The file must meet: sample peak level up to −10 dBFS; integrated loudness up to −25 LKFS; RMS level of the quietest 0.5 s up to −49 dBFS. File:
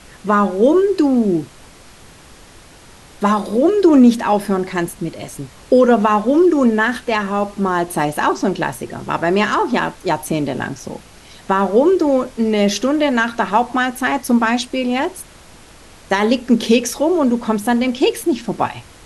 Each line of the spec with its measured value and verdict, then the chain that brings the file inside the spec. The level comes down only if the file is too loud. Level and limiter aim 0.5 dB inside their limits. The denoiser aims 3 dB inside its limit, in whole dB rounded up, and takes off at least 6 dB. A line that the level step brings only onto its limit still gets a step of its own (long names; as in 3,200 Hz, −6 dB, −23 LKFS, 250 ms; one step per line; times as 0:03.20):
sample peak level −2.5 dBFS: out of spec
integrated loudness −16.5 LKFS: out of spec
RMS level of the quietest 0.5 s −43 dBFS: out of spec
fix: level −9 dB